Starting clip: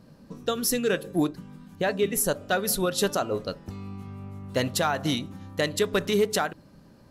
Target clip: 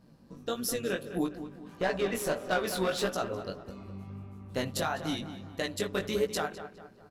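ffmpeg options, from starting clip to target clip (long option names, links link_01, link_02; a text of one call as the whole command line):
ffmpeg -i in.wav -filter_complex "[0:a]asplit=3[link_01][link_02][link_03];[link_01]afade=type=out:start_time=1.65:duration=0.02[link_04];[link_02]asplit=2[link_05][link_06];[link_06]highpass=frequency=720:poles=1,volume=19dB,asoftclip=type=tanh:threshold=-15dB[link_07];[link_05][link_07]amix=inputs=2:normalize=0,lowpass=frequency=2700:poles=1,volume=-6dB,afade=type=in:start_time=1.65:duration=0.02,afade=type=out:start_time=3.06:duration=0.02[link_08];[link_03]afade=type=in:start_time=3.06:duration=0.02[link_09];[link_04][link_08][link_09]amix=inputs=3:normalize=0,tremolo=f=130:d=0.519,flanger=delay=16:depth=5.5:speed=1.6,asplit=2[link_10][link_11];[link_11]adelay=204,lowpass=frequency=2800:poles=1,volume=-11dB,asplit=2[link_12][link_13];[link_13]adelay=204,lowpass=frequency=2800:poles=1,volume=0.44,asplit=2[link_14][link_15];[link_15]adelay=204,lowpass=frequency=2800:poles=1,volume=0.44,asplit=2[link_16][link_17];[link_17]adelay=204,lowpass=frequency=2800:poles=1,volume=0.44,asplit=2[link_18][link_19];[link_19]adelay=204,lowpass=frequency=2800:poles=1,volume=0.44[link_20];[link_12][link_14][link_16][link_18][link_20]amix=inputs=5:normalize=0[link_21];[link_10][link_21]amix=inputs=2:normalize=0,volume=-1.5dB" out.wav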